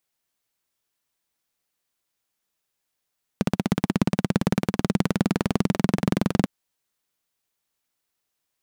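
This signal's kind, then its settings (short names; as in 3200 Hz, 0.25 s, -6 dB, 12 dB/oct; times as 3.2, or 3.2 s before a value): single-cylinder engine model, changing speed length 3.05 s, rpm 1900, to 2700, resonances 190 Hz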